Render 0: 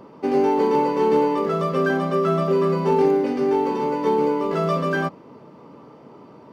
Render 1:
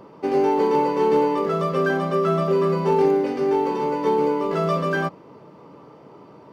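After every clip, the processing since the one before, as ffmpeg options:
ffmpeg -i in.wav -af "equalizer=frequency=240:width_type=o:width=0.22:gain=-8" out.wav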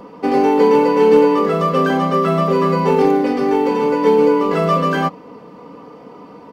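ffmpeg -i in.wav -af "aecho=1:1:4.1:0.66,volume=6dB" out.wav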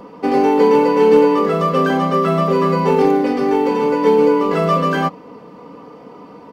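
ffmpeg -i in.wav -af anull out.wav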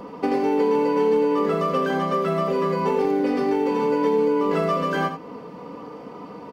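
ffmpeg -i in.wav -filter_complex "[0:a]acompressor=threshold=-20dB:ratio=5,asplit=2[link_01][link_02];[link_02]aecho=0:1:82:0.355[link_03];[link_01][link_03]amix=inputs=2:normalize=0" out.wav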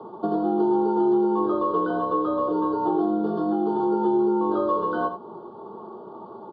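ffmpeg -i in.wav -af "asuperstop=centerf=2300:order=8:qfactor=1.1,highpass=frequency=340:width_type=q:width=0.5412,highpass=frequency=340:width_type=q:width=1.307,lowpass=frequency=3400:width_type=q:width=0.5176,lowpass=frequency=3400:width_type=q:width=0.7071,lowpass=frequency=3400:width_type=q:width=1.932,afreqshift=-82" out.wav

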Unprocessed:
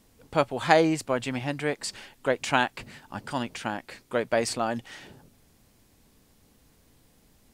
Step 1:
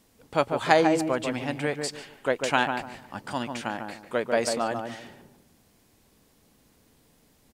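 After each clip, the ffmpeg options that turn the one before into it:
ffmpeg -i in.wav -filter_complex "[0:a]lowshelf=frequency=110:gain=-8,asplit=2[link_01][link_02];[link_02]adelay=146,lowpass=frequency=1100:poles=1,volume=-4dB,asplit=2[link_03][link_04];[link_04]adelay=146,lowpass=frequency=1100:poles=1,volume=0.3,asplit=2[link_05][link_06];[link_06]adelay=146,lowpass=frequency=1100:poles=1,volume=0.3,asplit=2[link_07][link_08];[link_08]adelay=146,lowpass=frequency=1100:poles=1,volume=0.3[link_09];[link_01][link_03][link_05][link_07][link_09]amix=inputs=5:normalize=0" out.wav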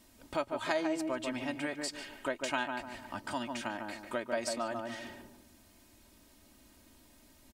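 ffmpeg -i in.wav -af "equalizer=frequency=420:width_type=o:width=1.1:gain=-3,aecho=1:1:3.2:0.7,acompressor=threshold=-39dB:ratio=2" out.wav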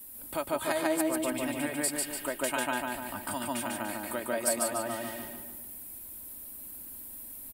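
ffmpeg -i in.wav -filter_complex "[0:a]acrossover=split=110|1200[link_01][link_02][link_03];[link_01]acrusher=samples=12:mix=1:aa=0.000001[link_04];[link_04][link_02][link_03]amix=inputs=3:normalize=0,aexciter=amount=15.8:drive=2.9:freq=8900,aecho=1:1:146|292|438|584|730:0.668|0.267|0.107|0.0428|0.0171" out.wav

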